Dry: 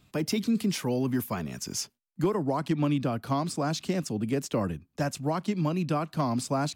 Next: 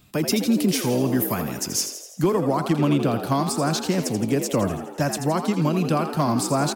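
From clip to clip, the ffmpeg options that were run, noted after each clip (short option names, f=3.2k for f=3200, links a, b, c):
-filter_complex "[0:a]highshelf=f=10k:g=10.5,asplit=8[a][b][c][d][e][f][g][h];[b]adelay=83,afreqshift=70,volume=-9dB[i];[c]adelay=166,afreqshift=140,volume=-13.6dB[j];[d]adelay=249,afreqshift=210,volume=-18.2dB[k];[e]adelay=332,afreqshift=280,volume=-22.7dB[l];[f]adelay=415,afreqshift=350,volume=-27.3dB[m];[g]adelay=498,afreqshift=420,volume=-31.9dB[n];[h]adelay=581,afreqshift=490,volume=-36.5dB[o];[a][i][j][k][l][m][n][o]amix=inputs=8:normalize=0,volume=5.5dB"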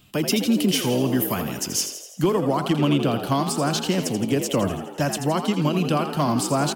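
-af "equalizer=f=3k:w=6:g=11,bandreject=f=54.46:t=h:w=4,bandreject=f=108.92:t=h:w=4,bandreject=f=163.38:t=h:w=4"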